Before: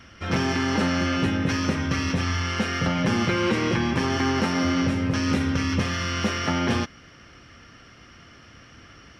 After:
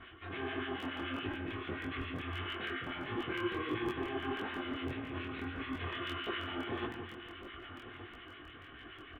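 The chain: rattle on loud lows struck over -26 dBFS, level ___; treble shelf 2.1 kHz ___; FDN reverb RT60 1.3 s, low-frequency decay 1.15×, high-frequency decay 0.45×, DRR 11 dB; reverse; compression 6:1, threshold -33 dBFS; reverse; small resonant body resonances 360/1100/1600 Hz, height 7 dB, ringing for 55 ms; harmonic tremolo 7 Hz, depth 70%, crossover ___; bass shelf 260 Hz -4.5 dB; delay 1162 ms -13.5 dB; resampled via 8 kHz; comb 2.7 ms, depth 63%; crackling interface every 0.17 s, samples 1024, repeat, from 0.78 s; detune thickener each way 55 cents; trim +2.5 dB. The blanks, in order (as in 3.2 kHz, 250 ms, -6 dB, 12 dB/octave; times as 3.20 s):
-30 dBFS, +2 dB, 1.4 kHz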